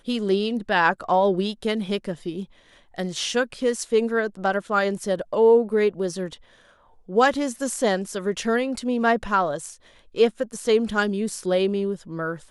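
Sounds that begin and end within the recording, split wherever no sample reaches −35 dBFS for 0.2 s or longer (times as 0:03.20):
0:02.96–0:06.35
0:07.09–0:09.74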